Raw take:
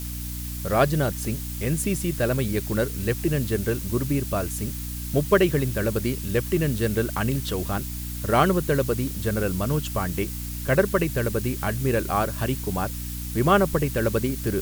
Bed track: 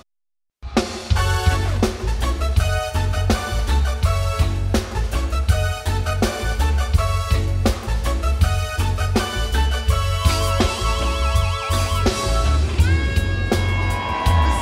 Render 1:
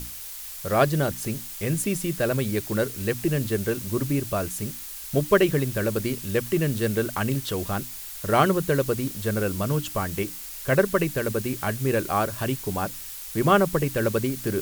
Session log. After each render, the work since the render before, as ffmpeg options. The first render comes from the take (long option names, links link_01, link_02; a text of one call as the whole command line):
ffmpeg -i in.wav -af "bandreject=frequency=60:width_type=h:width=6,bandreject=frequency=120:width_type=h:width=6,bandreject=frequency=180:width_type=h:width=6,bandreject=frequency=240:width_type=h:width=6,bandreject=frequency=300:width_type=h:width=6" out.wav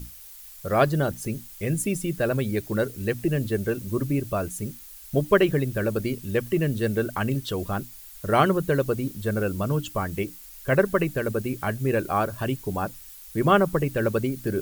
ffmpeg -i in.wav -af "afftdn=noise_reduction=10:noise_floor=-38" out.wav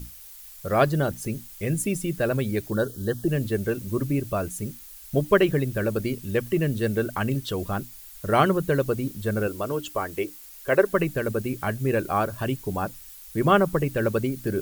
ffmpeg -i in.wav -filter_complex "[0:a]asplit=3[link_01][link_02][link_03];[link_01]afade=type=out:start_time=2.7:duration=0.02[link_04];[link_02]asuperstop=centerf=2300:order=12:qfactor=2,afade=type=in:start_time=2.7:duration=0.02,afade=type=out:start_time=3.27:duration=0.02[link_05];[link_03]afade=type=in:start_time=3.27:duration=0.02[link_06];[link_04][link_05][link_06]amix=inputs=3:normalize=0,asettb=1/sr,asplit=3[link_07][link_08][link_09];[link_07]atrim=end=9.474[link_10];[link_08]atrim=start=9.47:end=10.94,asetpts=PTS-STARTPTS,afade=type=in:duration=0.004:curve=qsin,afade=type=out:start_time=1.466:duration=0.004:curve=qsin,lowshelf=frequency=260:width_type=q:width=1.5:gain=-8.5[link_11];[link_09]atrim=start=10.936[link_12];[link_10][link_11]acrossfade=duration=0.004:curve1=hsin:curve2=qsin[link_13];[link_13][link_12]acrossfade=duration=0.004:curve1=qsin:curve2=hsin" out.wav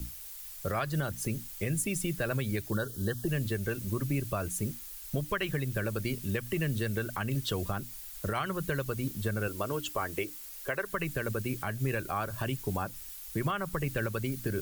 ffmpeg -i in.wav -filter_complex "[0:a]acrossover=split=130|970|3300[link_01][link_02][link_03][link_04];[link_02]acompressor=threshold=-32dB:ratio=5[link_05];[link_01][link_05][link_03][link_04]amix=inputs=4:normalize=0,alimiter=limit=-20.5dB:level=0:latency=1:release=158" out.wav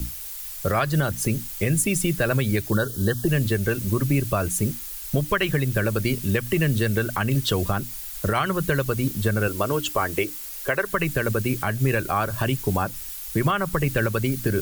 ffmpeg -i in.wav -af "volume=9.5dB" out.wav